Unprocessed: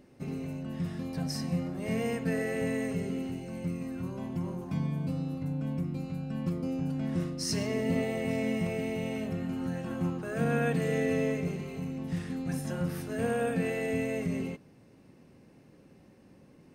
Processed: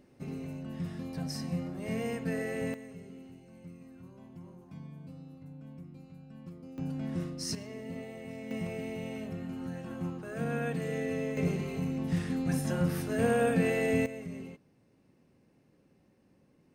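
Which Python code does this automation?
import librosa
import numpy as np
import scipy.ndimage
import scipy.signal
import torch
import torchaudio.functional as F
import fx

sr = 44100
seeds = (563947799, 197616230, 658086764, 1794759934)

y = fx.gain(x, sr, db=fx.steps((0.0, -3.0), (2.74, -14.5), (6.78, -3.5), (7.55, -12.0), (8.51, -5.0), (11.37, 3.0), (14.06, -9.0)))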